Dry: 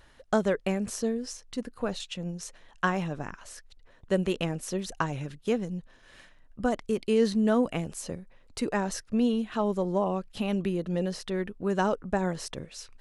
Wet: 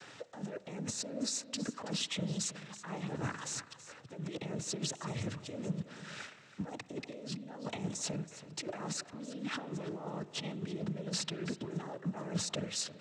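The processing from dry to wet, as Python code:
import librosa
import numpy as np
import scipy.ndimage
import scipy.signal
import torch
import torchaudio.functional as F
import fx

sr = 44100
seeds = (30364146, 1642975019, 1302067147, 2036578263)

y = fx.law_mismatch(x, sr, coded='mu')
y = fx.high_shelf(y, sr, hz=5400.0, db=7.5)
y = fx.over_compress(y, sr, threshold_db=-34.0, ratio=-1.0)
y = fx.noise_vocoder(y, sr, seeds[0], bands=12)
y = y + 10.0 ** (-15.0 / 20.0) * np.pad(y, (int(326 * sr / 1000.0), 0))[:len(y)]
y = fx.rev_spring(y, sr, rt60_s=2.2, pass_ms=(39, 53), chirp_ms=50, drr_db=17.0)
y = F.gain(torch.from_numpy(y), -5.0).numpy()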